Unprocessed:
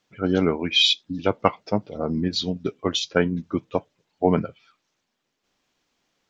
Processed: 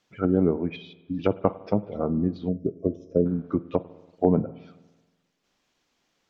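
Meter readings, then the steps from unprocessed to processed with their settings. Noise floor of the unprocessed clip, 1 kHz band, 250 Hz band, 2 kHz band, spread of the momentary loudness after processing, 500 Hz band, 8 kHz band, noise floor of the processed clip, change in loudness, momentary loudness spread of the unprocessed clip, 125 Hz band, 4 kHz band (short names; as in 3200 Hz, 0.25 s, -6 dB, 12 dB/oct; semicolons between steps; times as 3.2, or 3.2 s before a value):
-78 dBFS, -6.0 dB, 0.0 dB, under -15 dB, 8 LU, -1.0 dB, n/a, -74 dBFS, -3.0 dB, 10 LU, 0.0 dB, under -25 dB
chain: treble ducked by the level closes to 590 Hz, closed at -20 dBFS; spring tank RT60 1.2 s, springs 48/54 ms, chirp 55 ms, DRR 17 dB; spectral gain 2.49–3.26, 680–5100 Hz -25 dB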